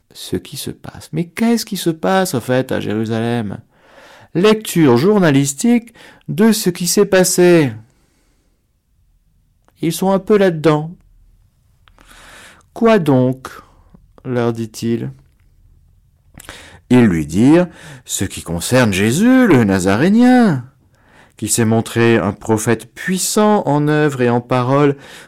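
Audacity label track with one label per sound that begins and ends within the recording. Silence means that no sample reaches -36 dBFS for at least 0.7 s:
9.680000	10.940000	sound
11.880000	15.190000	sound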